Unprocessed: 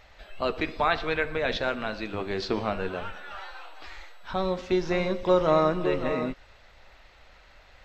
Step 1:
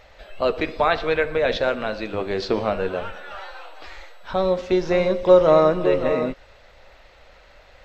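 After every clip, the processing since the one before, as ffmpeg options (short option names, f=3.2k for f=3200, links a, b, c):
-af "equalizer=f=530:t=o:w=0.65:g=7,volume=3dB"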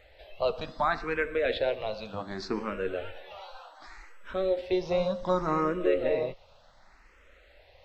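-filter_complex "[0:a]asplit=2[a][b];[b]afreqshift=0.67[c];[a][c]amix=inputs=2:normalize=1,volume=-5dB"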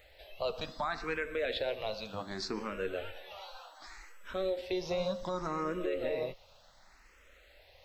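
-af "alimiter=limit=-21dB:level=0:latency=1:release=113,crystalizer=i=2.5:c=0,volume=-4dB"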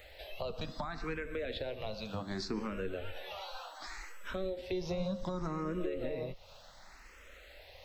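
-filter_complex "[0:a]acrossover=split=270[a][b];[b]acompressor=threshold=-46dB:ratio=4[c];[a][c]amix=inputs=2:normalize=0,volume=5.5dB"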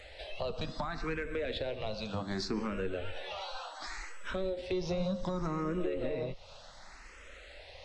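-filter_complex "[0:a]asplit=2[a][b];[b]asoftclip=type=tanh:threshold=-34dB,volume=-6dB[c];[a][c]amix=inputs=2:normalize=0,aresample=22050,aresample=44100"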